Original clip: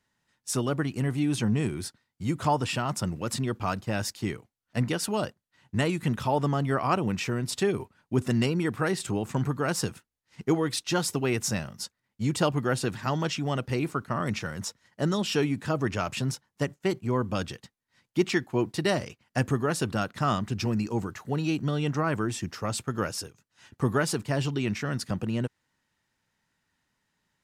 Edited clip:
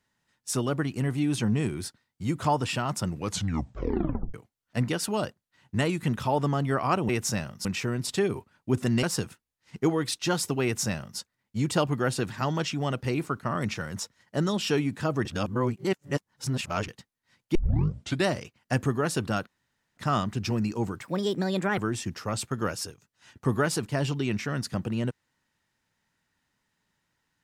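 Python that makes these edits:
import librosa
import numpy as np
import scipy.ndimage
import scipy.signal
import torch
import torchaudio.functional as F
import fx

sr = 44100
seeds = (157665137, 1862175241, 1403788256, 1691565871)

y = fx.edit(x, sr, fx.tape_stop(start_s=3.15, length_s=1.19),
    fx.cut(start_s=8.47, length_s=1.21),
    fx.duplicate(start_s=11.28, length_s=0.56, to_s=7.09),
    fx.reverse_span(start_s=15.9, length_s=1.63),
    fx.tape_start(start_s=18.2, length_s=0.71),
    fx.insert_room_tone(at_s=20.12, length_s=0.5),
    fx.speed_span(start_s=21.16, length_s=0.98, speed=1.28), tone=tone)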